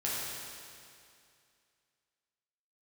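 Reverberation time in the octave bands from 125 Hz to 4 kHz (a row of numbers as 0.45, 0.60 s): 2.4, 2.4, 2.4, 2.4, 2.4, 2.3 s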